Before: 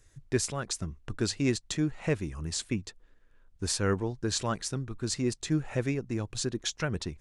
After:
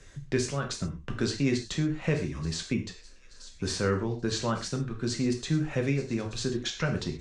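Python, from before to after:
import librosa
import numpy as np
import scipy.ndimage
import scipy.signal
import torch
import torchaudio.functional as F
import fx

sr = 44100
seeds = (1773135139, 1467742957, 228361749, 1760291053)

y = scipy.signal.sosfilt(scipy.signal.butter(2, 5600.0, 'lowpass', fs=sr, output='sos'), x)
y = fx.notch(y, sr, hz=870.0, q=14.0)
y = fx.echo_wet_highpass(y, sr, ms=879, feedback_pct=46, hz=3700.0, wet_db=-18.0)
y = fx.rev_gated(y, sr, seeds[0], gate_ms=150, shape='falling', drr_db=2.5)
y = fx.band_squash(y, sr, depth_pct=40)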